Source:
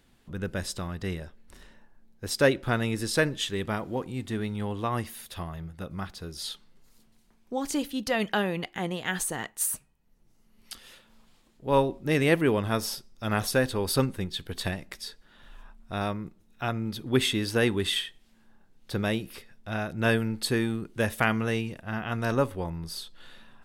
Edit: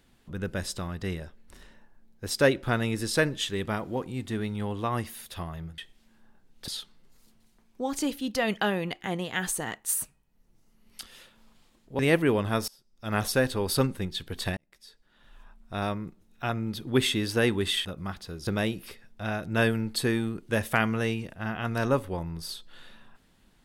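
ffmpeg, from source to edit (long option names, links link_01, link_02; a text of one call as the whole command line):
ffmpeg -i in.wav -filter_complex "[0:a]asplit=8[link_01][link_02][link_03][link_04][link_05][link_06][link_07][link_08];[link_01]atrim=end=5.782[link_09];[link_02]atrim=start=18.038:end=18.942[link_10];[link_03]atrim=start=6.398:end=11.712[link_11];[link_04]atrim=start=12.178:end=12.87,asetpts=PTS-STARTPTS,afade=type=out:start_time=0.688:duration=0.004:curve=hsin:silence=0.0630957[link_12];[link_05]atrim=start=12.87:end=14.76,asetpts=PTS-STARTPTS,afade=type=in:duration=0.49:curve=qua:silence=0.0630957,afade=type=out:start_time=1.886:duration=0.004:curve=hsin[link_13];[link_06]atrim=start=14.76:end=18.042,asetpts=PTS-STARTPTS,afade=type=in:duration=1.28[link_14];[link_07]atrim=start=5.778:end=6.402[link_15];[link_08]atrim=start=18.938[link_16];[link_09][link_10]acrossfade=duration=0.004:curve1=hsin:curve2=hsin[link_17];[link_17][link_11]acrossfade=duration=0.004:curve1=hsin:curve2=hsin[link_18];[link_12][link_13][link_14]concat=n=3:v=0:a=1[link_19];[link_18][link_19]acrossfade=duration=0.004:curve1=hsin:curve2=hsin[link_20];[link_20][link_15]acrossfade=duration=0.004:curve1=hsin:curve2=hsin[link_21];[link_21][link_16]acrossfade=duration=0.004:curve1=hsin:curve2=hsin" out.wav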